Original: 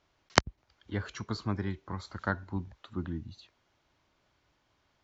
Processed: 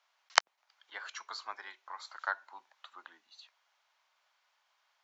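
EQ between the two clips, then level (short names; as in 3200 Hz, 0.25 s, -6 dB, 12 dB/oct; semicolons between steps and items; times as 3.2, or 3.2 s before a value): HPF 760 Hz 24 dB/oct; 0.0 dB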